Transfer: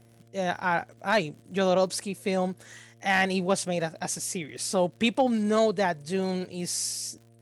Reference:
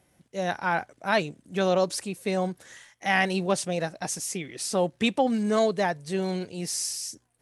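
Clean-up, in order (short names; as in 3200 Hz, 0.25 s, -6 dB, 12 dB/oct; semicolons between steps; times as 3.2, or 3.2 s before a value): clip repair -12.5 dBFS; de-click; de-hum 115.2 Hz, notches 6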